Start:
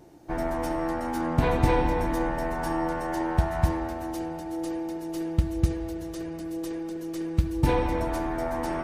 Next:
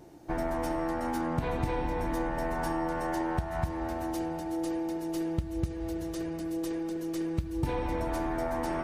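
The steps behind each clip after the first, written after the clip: compressor 6:1, threshold -27 dBFS, peak gain reduction 11.5 dB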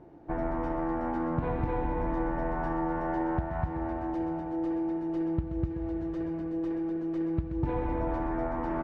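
LPF 1600 Hz 12 dB/oct; echo 0.128 s -9.5 dB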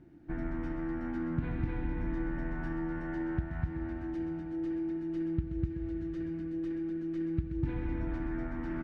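band shelf 690 Hz -14 dB; gain -1.5 dB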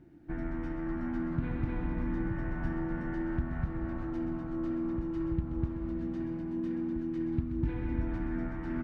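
echoes that change speed 0.465 s, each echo -5 st, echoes 2, each echo -6 dB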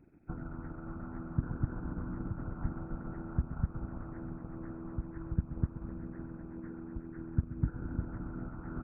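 nonlinear frequency compression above 1300 Hz 4:1; transient shaper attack +2 dB, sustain -4 dB; harmonic-percussive split harmonic -15 dB; gain +1.5 dB

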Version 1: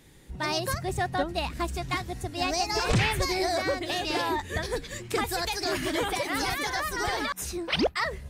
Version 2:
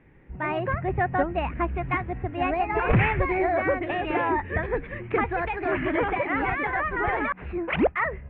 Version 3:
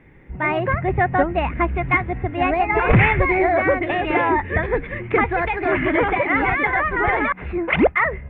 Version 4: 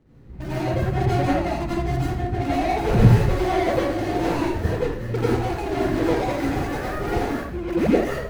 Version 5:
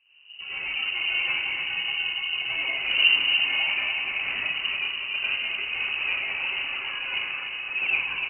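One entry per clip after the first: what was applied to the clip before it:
steep low-pass 2500 Hz 48 dB/oct; AGC gain up to 4 dB
small resonant body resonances 2100/3500 Hz, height 8 dB, ringing for 25 ms; gain +6 dB
median filter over 41 samples; plate-style reverb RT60 0.58 s, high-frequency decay 0.85×, pre-delay 75 ms, DRR -7.5 dB; gain -7.5 dB
feedback echo 0.293 s, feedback 57%, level -6 dB; inverted band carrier 2900 Hz; gain -7.5 dB

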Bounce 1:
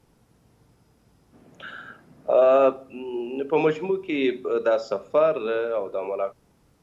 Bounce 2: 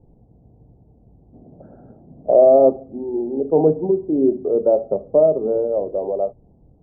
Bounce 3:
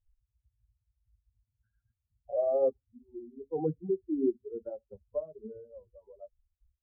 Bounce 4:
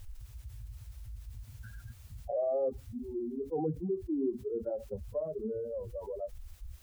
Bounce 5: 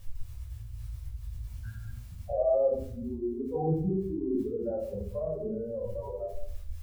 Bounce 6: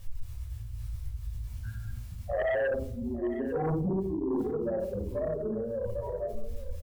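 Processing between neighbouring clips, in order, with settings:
elliptic low-pass 750 Hz, stop band 80 dB; low shelf 110 Hz +10 dB; gain +6 dB
per-bin expansion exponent 3; cascading phaser rising 0.32 Hz; gain -7.5 dB
fast leveller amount 70%; gain -6 dB
shoebox room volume 730 m³, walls furnished, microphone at 5.7 m; gain -5 dB
sine folder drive 7 dB, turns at -16.5 dBFS; echo 0.85 s -14 dB; gain -8.5 dB

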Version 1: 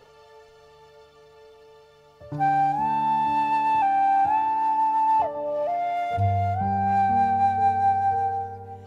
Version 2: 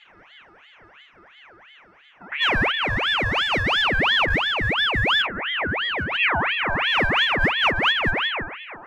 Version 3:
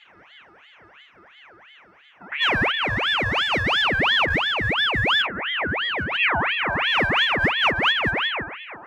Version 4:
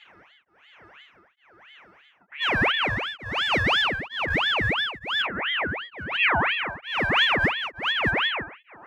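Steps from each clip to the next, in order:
Wiener smoothing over 15 samples; ring modulator with a swept carrier 1700 Hz, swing 55%, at 2.9 Hz; gain +4.5 dB
HPF 61 Hz
beating tremolo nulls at 1.1 Hz

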